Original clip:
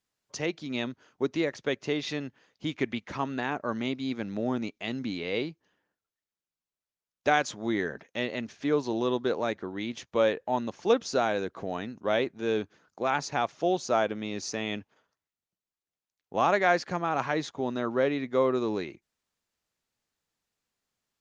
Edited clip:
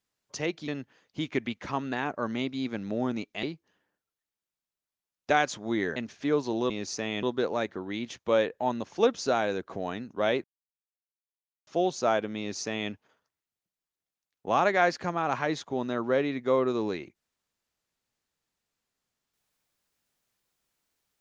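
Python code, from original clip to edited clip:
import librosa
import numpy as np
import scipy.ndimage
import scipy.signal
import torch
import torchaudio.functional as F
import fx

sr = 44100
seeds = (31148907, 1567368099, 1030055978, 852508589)

y = fx.edit(x, sr, fx.cut(start_s=0.68, length_s=1.46),
    fx.cut(start_s=4.89, length_s=0.51),
    fx.cut(start_s=7.93, length_s=0.43),
    fx.silence(start_s=12.31, length_s=1.23),
    fx.duplicate(start_s=14.25, length_s=0.53, to_s=9.1), tone=tone)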